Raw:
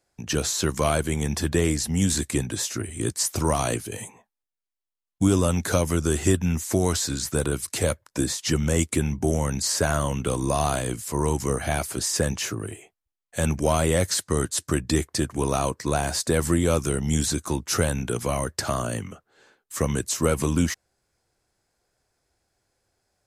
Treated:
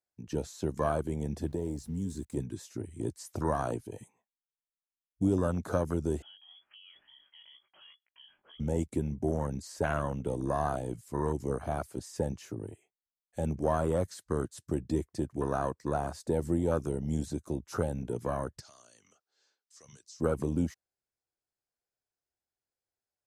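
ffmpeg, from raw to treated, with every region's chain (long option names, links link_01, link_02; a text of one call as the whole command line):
ffmpeg -i in.wav -filter_complex "[0:a]asettb=1/sr,asplit=3[link_01][link_02][link_03];[link_01]atrim=end=1.474[link_04];[link_02]atrim=start=1.47:end=2.37,asetpts=PTS-STARTPTS,afade=type=in:duration=0.004:curve=qsin,afade=type=out:start_time=0.896:duration=0.004:curve=qsin,equalizer=frequency=2300:width=1.1:gain=-7,acompressor=threshold=-24dB:ratio=2:attack=3.2:release=140:knee=1:detection=peak,aeval=exprs='val(0)*gte(abs(val(0)),0.0106)':channel_layout=same[link_05];[link_03]atrim=start=2.366[link_06];[link_04][link_05]acrossfade=duration=0.004:curve1=hsin:curve2=qsin[link_07];[link_07][link_06]acrossfade=duration=0.004:curve1=qsin:curve2=hsin,asettb=1/sr,asplit=3[link_08][link_09][link_10];[link_08]atrim=end=6.224[link_11];[link_09]atrim=start=6.22:end=8.6,asetpts=PTS-STARTPTS,afade=type=in:duration=0.004:curve=qsin,afade=type=out:start_time=2.376:duration=0.004:curve=qsin,lowpass=frequency=2900:width_type=q:width=0.5098,lowpass=frequency=2900:width_type=q:width=0.6013,lowpass=frequency=2900:width_type=q:width=0.9,lowpass=frequency=2900:width_type=q:width=2.563,afreqshift=-3400,acompressor=threshold=-29dB:ratio=2.5:attack=3.2:release=140:knee=1:detection=peak,flanger=delay=16:depth=4.4:speed=2.1[link_12];[link_10]atrim=start=8.596[link_13];[link_11][link_12]acrossfade=duration=0.004:curve1=hsin:curve2=qsin[link_14];[link_14][link_13]acrossfade=duration=0.004:curve1=qsin:curve2=hsin,asettb=1/sr,asplit=3[link_15][link_16][link_17];[link_15]atrim=end=18.604[link_18];[link_16]atrim=start=18.6:end=20.2,asetpts=PTS-STARTPTS,afade=type=in:duration=0.004:curve=qsin,afade=type=out:start_time=1.596:duration=0.004:curve=qsin,bass=frequency=250:gain=-12,treble=frequency=4000:gain=12,acompressor=threshold=-39dB:ratio=2:attack=3.2:release=140:knee=1:detection=peak,lowpass=frequency=5300:width_type=q:width=2.8[link_19];[link_17]atrim=start=20.196[link_20];[link_18][link_19]acrossfade=duration=0.004:curve1=hsin:curve2=qsin[link_21];[link_21][link_20]acrossfade=duration=0.004:curve1=qsin:curve2=hsin,afwtdn=0.0447,lowshelf=frequency=150:gain=-5,volume=-5.5dB" out.wav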